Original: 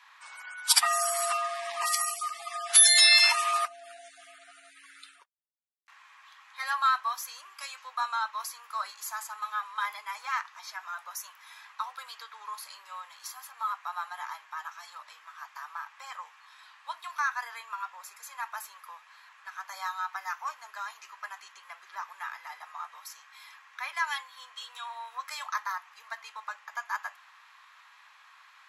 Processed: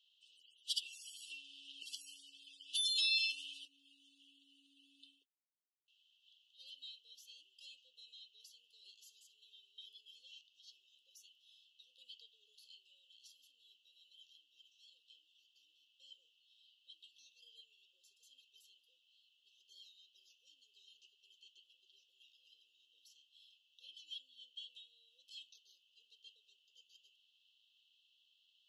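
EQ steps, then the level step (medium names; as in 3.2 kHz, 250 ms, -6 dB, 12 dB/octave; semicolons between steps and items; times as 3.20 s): vowel filter i; brick-wall FIR band-stop 550–2600 Hz; bass shelf 380 Hz -4 dB; +4.5 dB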